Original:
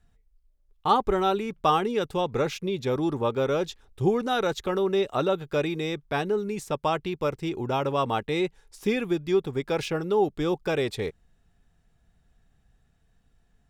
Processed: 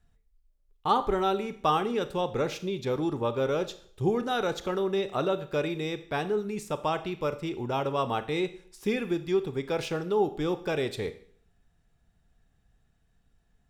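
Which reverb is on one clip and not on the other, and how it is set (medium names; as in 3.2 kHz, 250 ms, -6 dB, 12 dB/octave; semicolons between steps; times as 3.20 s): Schroeder reverb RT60 0.55 s, combs from 26 ms, DRR 11.5 dB; trim -3 dB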